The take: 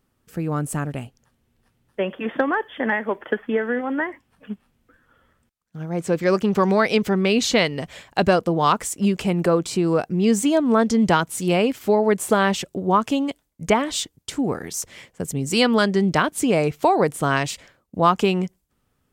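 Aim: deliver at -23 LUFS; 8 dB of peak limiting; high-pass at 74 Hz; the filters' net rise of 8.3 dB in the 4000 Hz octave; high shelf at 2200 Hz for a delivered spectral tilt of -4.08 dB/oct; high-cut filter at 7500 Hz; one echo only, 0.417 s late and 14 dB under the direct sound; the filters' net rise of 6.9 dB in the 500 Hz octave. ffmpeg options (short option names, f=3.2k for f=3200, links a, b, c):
-af "highpass=74,lowpass=7.5k,equalizer=f=500:t=o:g=8,highshelf=f=2.2k:g=8,equalizer=f=4k:t=o:g=3.5,alimiter=limit=-6dB:level=0:latency=1,aecho=1:1:417:0.2,volume=-5dB"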